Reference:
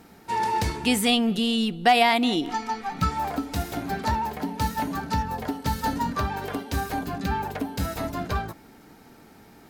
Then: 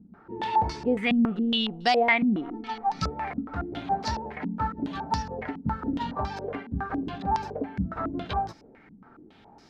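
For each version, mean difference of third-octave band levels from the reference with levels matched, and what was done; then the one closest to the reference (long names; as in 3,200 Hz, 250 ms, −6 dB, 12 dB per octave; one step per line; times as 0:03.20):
9.5 dB: low-pass on a step sequencer 7.2 Hz 210–5,300 Hz
level −5.5 dB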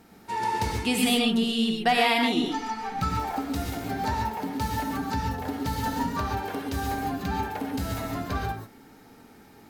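3.5 dB: reverb whose tail is shaped and stops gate 160 ms rising, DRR 0.5 dB
level −4 dB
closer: second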